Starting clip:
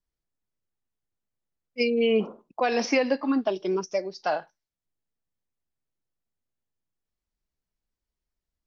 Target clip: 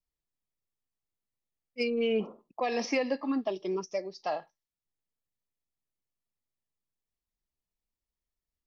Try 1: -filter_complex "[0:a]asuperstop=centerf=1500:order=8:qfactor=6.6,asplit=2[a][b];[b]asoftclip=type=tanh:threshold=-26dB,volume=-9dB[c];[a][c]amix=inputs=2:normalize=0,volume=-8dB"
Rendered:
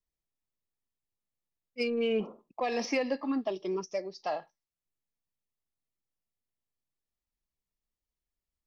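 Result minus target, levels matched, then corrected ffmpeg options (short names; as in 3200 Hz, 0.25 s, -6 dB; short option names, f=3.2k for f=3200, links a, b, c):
soft clip: distortion +9 dB
-filter_complex "[0:a]asuperstop=centerf=1500:order=8:qfactor=6.6,asplit=2[a][b];[b]asoftclip=type=tanh:threshold=-17.5dB,volume=-9dB[c];[a][c]amix=inputs=2:normalize=0,volume=-8dB"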